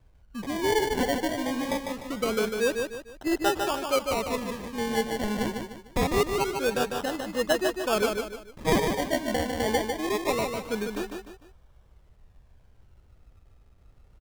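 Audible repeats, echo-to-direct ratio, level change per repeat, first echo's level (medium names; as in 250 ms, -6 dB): 3, -4.5 dB, -8.5 dB, -5.0 dB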